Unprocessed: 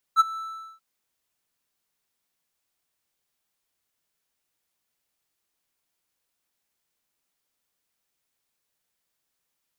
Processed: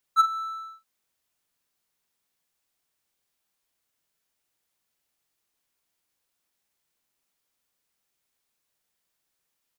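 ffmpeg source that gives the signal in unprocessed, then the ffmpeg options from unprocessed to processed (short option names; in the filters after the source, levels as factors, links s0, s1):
-f lavfi -i "aevalsrc='0.355*(1-4*abs(mod(1320*t+0.25,1)-0.5))':d=0.635:s=44100,afade=t=in:d=0.042,afade=t=out:st=0.042:d=0.021:silence=0.106,afade=t=out:st=0.21:d=0.425"
-filter_complex "[0:a]asplit=2[s0][s1];[s1]adelay=44,volume=0.316[s2];[s0][s2]amix=inputs=2:normalize=0"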